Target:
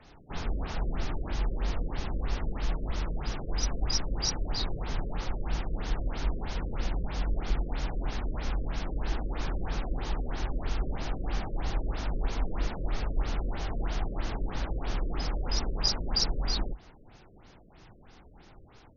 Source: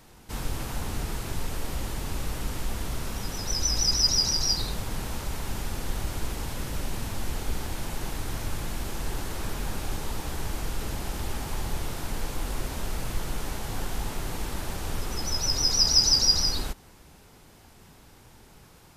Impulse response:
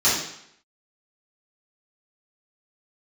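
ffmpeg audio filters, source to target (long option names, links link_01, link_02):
-af "afreqshift=-54,afftfilt=real='re*lt(b*sr/1024,590*pow(6900/590,0.5+0.5*sin(2*PI*3.1*pts/sr)))':imag='im*lt(b*sr/1024,590*pow(6900/590,0.5+0.5*sin(2*PI*3.1*pts/sr)))':win_size=1024:overlap=0.75"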